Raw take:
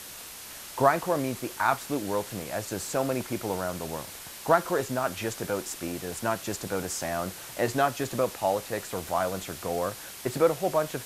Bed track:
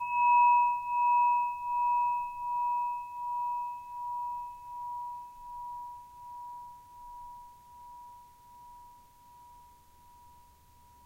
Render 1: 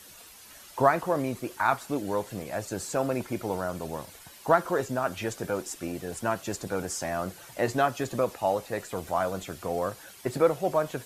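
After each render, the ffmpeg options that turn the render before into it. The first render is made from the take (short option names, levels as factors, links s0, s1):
-af "afftdn=nr=10:nf=-43"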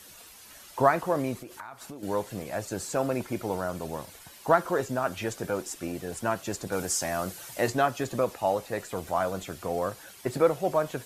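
-filter_complex "[0:a]asettb=1/sr,asplit=3[s0][s1][s2];[s0]atrim=end=1.354[s3];[s1]atrim=start=1.35:end=2.03,asetpts=PTS-STARTPTS,afade=t=in:d=0.004:c=qsin,afade=t=out:st=0.676:d=0.004:c=qsin,acompressor=threshold=0.0141:ratio=16:attack=3.2:release=140:knee=1:detection=peak[s4];[s2]atrim=start=2.026[s5];[s3][s4]acrossfade=d=0.004:c1=hsin:c2=qsin[s6];[s6][s5]acrossfade=d=0.004:c1=qsin:c2=hsin,asettb=1/sr,asplit=3[s7][s8][s9];[s7]atrim=end=6.724[s10];[s8]atrim=start=6.72:end=7.7,asetpts=PTS-STARTPTS,afade=t=in:d=0.004:c=qsin,afade=t=out:st=0.976:d=0.004:c=qsin,highshelf=f=3500:g=7.5[s11];[s9]atrim=start=7.696[s12];[s10][s11]acrossfade=d=0.004:c1=hsin:c2=qsin[s13];[s13][s12]acrossfade=d=0.004:c1=qsin:c2=hsin"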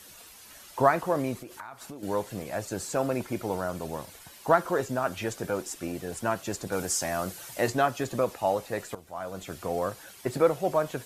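-filter_complex "[0:a]asplit=2[s0][s1];[s0]atrim=end=8.95,asetpts=PTS-STARTPTS,afade=t=out:st=8.946:d=0.004:c=hsin:silence=0.188365[s2];[s1]atrim=start=8.95,asetpts=PTS-STARTPTS,afade=t=in:d=0.58:c=qua:silence=0.188365[s3];[s2][s3]concat=n=2:v=0:a=1"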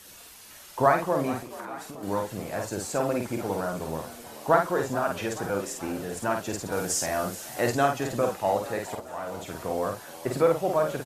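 -filter_complex "[0:a]asplit=2[s0][s1];[s1]adelay=50,volume=0.631[s2];[s0][s2]amix=inputs=2:normalize=0,asplit=7[s3][s4][s5][s6][s7][s8][s9];[s4]adelay=431,afreqshift=60,volume=0.158[s10];[s5]adelay=862,afreqshift=120,volume=0.0977[s11];[s6]adelay=1293,afreqshift=180,volume=0.061[s12];[s7]adelay=1724,afreqshift=240,volume=0.0376[s13];[s8]adelay=2155,afreqshift=300,volume=0.0234[s14];[s9]adelay=2586,afreqshift=360,volume=0.0145[s15];[s3][s10][s11][s12][s13][s14][s15]amix=inputs=7:normalize=0"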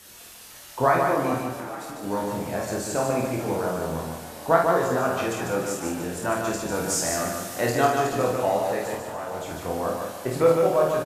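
-filter_complex "[0:a]asplit=2[s0][s1];[s1]adelay=24,volume=0.631[s2];[s0][s2]amix=inputs=2:normalize=0,aecho=1:1:148|296|444|592|740:0.631|0.227|0.0818|0.0294|0.0106"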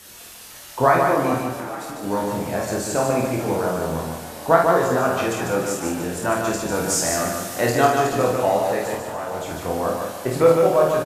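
-af "volume=1.58,alimiter=limit=0.794:level=0:latency=1"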